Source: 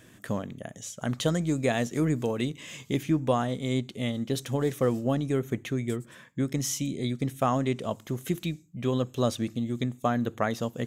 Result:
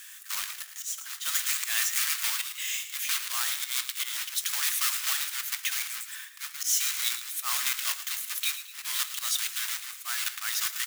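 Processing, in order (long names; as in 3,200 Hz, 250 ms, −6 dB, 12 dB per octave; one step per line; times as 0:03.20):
one scale factor per block 3 bits
inverse Chebyshev high-pass filter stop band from 360 Hz, stop band 60 dB
spectral tilt +3 dB per octave
volume swells 159 ms
in parallel at 0 dB: brickwall limiter −22.5 dBFS, peak gain reduction 9 dB
on the sum: echo with shifted repeats 111 ms, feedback 46%, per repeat +67 Hz, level −12 dB
on a send at −12 dB: convolution reverb RT60 0.35 s, pre-delay 3 ms
on the sum: level −1.5 dB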